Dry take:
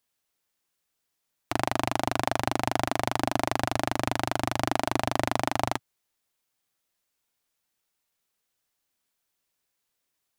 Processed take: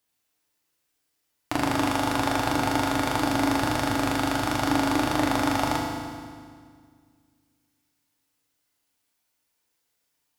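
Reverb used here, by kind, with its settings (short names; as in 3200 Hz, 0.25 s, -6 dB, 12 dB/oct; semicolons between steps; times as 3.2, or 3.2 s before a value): FDN reverb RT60 1.9 s, low-frequency decay 1.3×, high-frequency decay 0.9×, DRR -1.5 dB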